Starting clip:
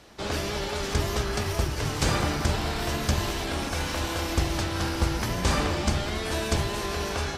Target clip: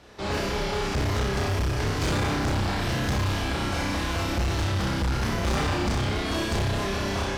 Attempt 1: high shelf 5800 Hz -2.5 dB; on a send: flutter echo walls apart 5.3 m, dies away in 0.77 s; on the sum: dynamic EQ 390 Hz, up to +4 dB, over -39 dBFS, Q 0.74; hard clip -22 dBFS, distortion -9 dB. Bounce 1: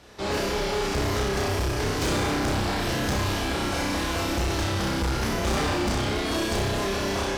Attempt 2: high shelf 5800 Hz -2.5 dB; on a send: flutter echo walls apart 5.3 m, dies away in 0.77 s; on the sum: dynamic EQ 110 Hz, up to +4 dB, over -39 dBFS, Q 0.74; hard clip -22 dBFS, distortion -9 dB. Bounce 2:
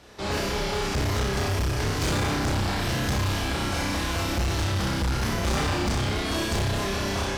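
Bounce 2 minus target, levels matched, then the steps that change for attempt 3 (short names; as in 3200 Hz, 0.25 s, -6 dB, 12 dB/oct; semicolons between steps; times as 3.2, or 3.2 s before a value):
8000 Hz band +3.0 dB
change: high shelf 5800 Hz -9 dB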